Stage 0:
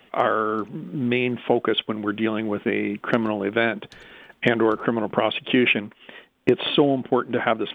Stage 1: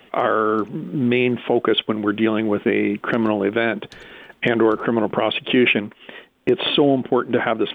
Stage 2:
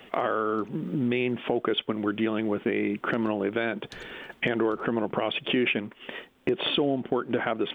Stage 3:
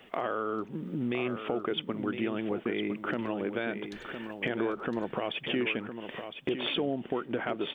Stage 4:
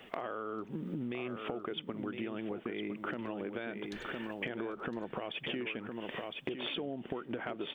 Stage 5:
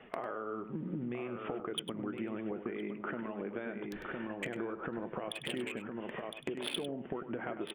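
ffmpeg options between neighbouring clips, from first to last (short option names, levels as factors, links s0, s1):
-af "equalizer=f=380:w=1.5:g=2.5,alimiter=level_in=2.99:limit=0.891:release=50:level=0:latency=1,volume=0.531"
-af "acompressor=threshold=0.0355:ratio=2"
-af "aecho=1:1:1010:0.376,volume=0.531"
-af "acompressor=threshold=0.0158:ratio=6,volume=1.12"
-filter_complex "[0:a]acrossover=split=2700[s0][s1];[s0]flanger=delay=4.6:depth=1.6:regen=-69:speed=0.31:shape=triangular[s2];[s1]acrusher=bits=5:mix=0:aa=0.5[s3];[s2][s3]amix=inputs=2:normalize=0,aecho=1:1:100:0.282,volume=1.58"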